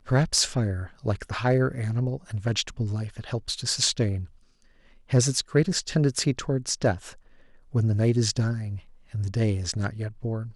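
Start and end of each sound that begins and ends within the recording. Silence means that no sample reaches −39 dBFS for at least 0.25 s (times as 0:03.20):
0:05.10–0:07.13
0:07.74–0:08.80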